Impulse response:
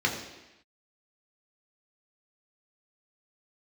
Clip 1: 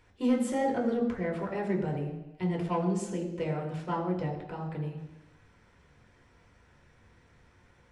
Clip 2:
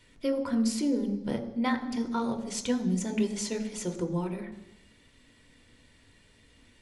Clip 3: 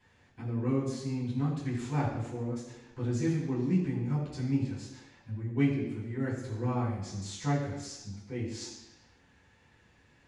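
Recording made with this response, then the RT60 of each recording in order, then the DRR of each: 1; 0.95 s, 0.95 s, 0.95 s; -1.0 dB, 6.5 dB, -10.0 dB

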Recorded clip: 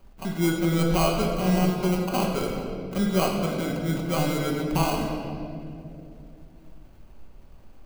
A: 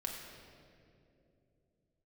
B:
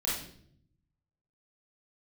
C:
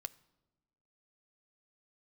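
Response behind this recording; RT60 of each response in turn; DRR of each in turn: A; 2.8 s, 0.65 s, 1.1 s; -0.5 dB, -7.5 dB, 13.5 dB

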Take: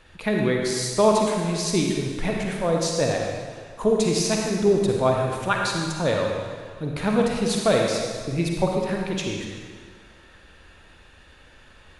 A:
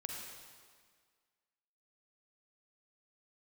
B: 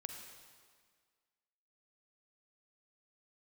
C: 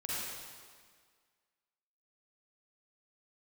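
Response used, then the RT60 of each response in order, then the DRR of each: A; 1.8 s, 1.8 s, 1.8 s; -0.5 dB, 4.0 dB, -8.0 dB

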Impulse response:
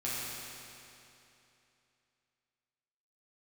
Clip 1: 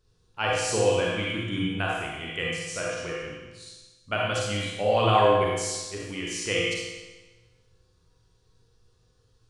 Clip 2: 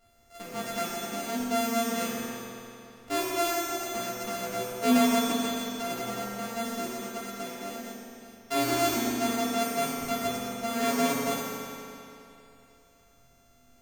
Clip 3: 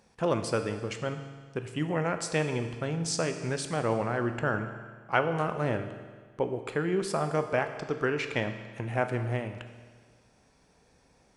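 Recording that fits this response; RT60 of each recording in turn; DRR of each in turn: 2; 1.2 s, 2.9 s, 1.6 s; -4.5 dB, -9.0 dB, 7.0 dB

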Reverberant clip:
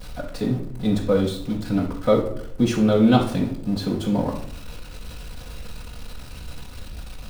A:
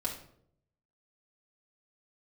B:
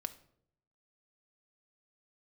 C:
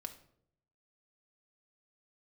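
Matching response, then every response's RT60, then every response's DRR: A; 0.65 s, 0.70 s, 0.70 s; -5.0 dB, 8.5 dB, 4.5 dB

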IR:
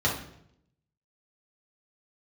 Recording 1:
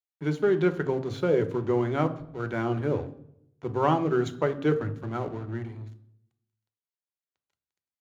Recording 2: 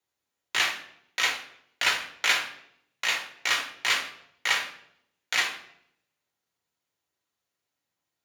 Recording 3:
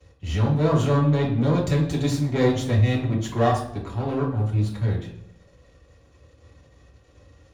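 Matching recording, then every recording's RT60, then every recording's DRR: 3; 0.75 s, 0.75 s, 0.70 s; 8.0 dB, 1.0 dB, -4.5 dB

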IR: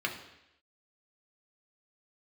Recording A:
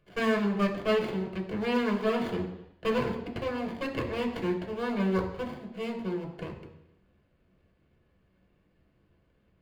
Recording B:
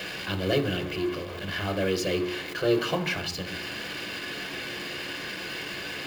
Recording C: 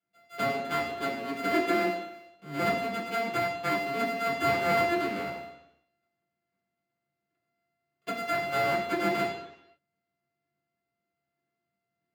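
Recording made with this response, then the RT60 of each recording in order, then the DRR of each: A; 0.85 s, 0.85 s, 0.85 s; 0.5 dB, 8.0 dB, -7.0 dB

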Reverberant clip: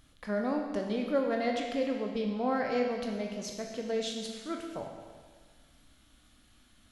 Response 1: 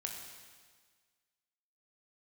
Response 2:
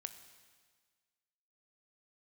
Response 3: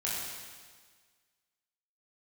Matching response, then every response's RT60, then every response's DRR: 1; 1.6 s, 1.6 s, 1.6 s; 1.0 dB, 9.0 dB, -7.0 dB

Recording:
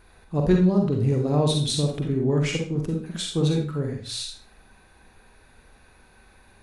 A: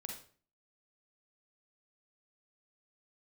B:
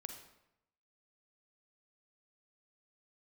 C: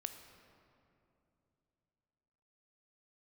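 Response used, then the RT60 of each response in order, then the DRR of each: A; 0.45 s, 0.85 s, 2.9 s; 1.0 dB, 5.0 dB, 7.0 dB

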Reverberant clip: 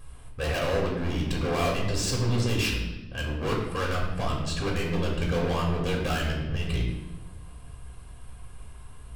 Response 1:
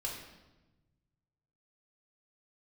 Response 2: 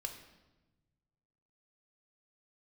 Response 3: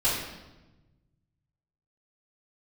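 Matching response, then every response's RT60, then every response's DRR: 1; 1.1 s, 1.1 s, 1.1 s; -3.5 dB, 4.0 dB, -13.0 dB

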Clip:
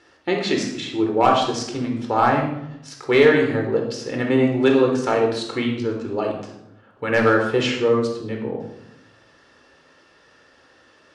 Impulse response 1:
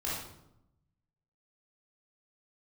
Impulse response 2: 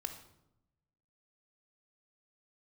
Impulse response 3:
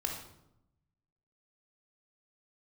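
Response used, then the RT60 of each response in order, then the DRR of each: 3; 0.80 s, 0.85 s, 0.85 s; -7.0 dB, 6.5 dB, 1.5 dB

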